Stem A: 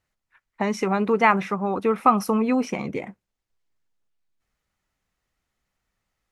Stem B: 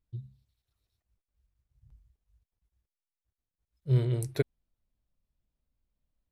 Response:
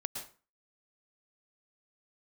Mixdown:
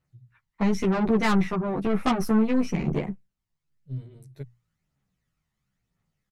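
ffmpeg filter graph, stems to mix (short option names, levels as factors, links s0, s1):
-filter_complex "[0:a]aphaser=in_gain=1:out_gain=1:delay=1.1:decay=0.39:speed=1:type=triangular,volume=1.33[s0];[1:a]bandreject=f=60:t=h:w=6,bandreject=f=120:t=h:w=6,volume=0.266[s1];[s0][s1]amix=inputs=2:normalize=0,equalizer=f=150:t=o:w=0.89:g=14,aeval=exprs='(tanh(6.31*val(0)+0.75)-tanh(0.75))/6.31':c=same,asplit=2[s2][s3];[s3]adelay=11.7,afreqshift=-1.6[s4];[s2][s4]amix=inputs=2:normalize=1"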